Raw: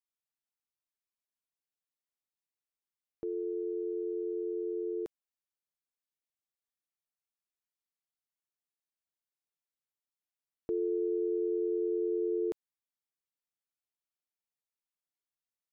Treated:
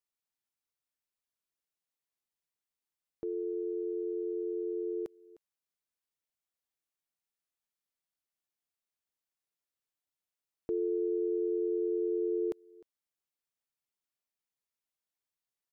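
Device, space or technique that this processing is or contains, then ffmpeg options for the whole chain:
ducked delay: -filter_complex "[0:a]asplit=3[link_01][link_02][link_03];[link_02]adelay=306,volume=-9dB[link_04];[link_03]apad=whole_len=707029[link_05];[link_04][link_05]sidechaincompress=threshold=-53dB:ratio=6:attack=16:release=518[link_06];[link_01][link_06]amix=inputs=2:normalize=0"

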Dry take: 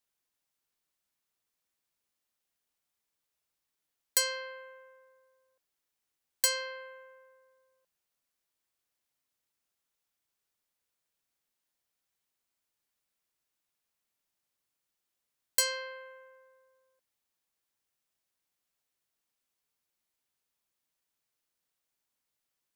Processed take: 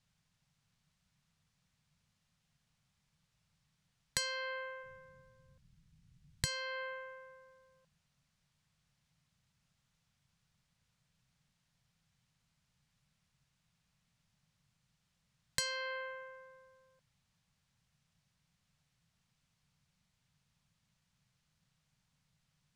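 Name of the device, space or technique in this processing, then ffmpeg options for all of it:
jukebox: -filter_complex "[0:a]asplit=3[link_01][link_02][link_03];[link_01]afade=type=out:start_time=4.82:duration=0.02[link_04];[link_02]asubboost=boost=7.5:cutoff=230,afade=type=in:start_time=4.82:duration=0.02,afade=type=out:start_time=6.47:duration=0.02[link_05];[link_03]afade=type=in:start_time=6.47:duration=0.02[link_06];[link_04][link_05][link_06]amix=inputs=3:normalize=0,lowpass=6400,lowshelf=frequency=230:width_type=q:width=3:gain=13.5,acompressor=threshold=-43dB:ratio=4,volume=7.5dB"

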